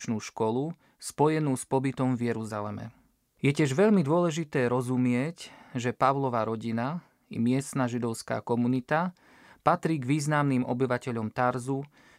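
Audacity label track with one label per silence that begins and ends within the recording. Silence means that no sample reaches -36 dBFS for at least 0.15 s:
0.720000	1.030000	silence
2.880000	3.430000	silence
5.460000	5.750000	silence
6.980000	7.310000	silence
9.090000	9.660000	silence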